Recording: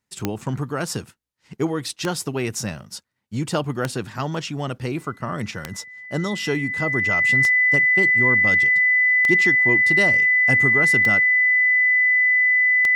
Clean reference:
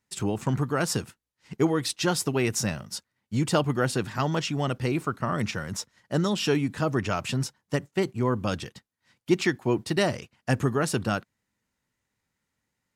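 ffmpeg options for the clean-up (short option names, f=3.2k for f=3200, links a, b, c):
-af "adeclick=t=4,bandreject=f=2k:w=30"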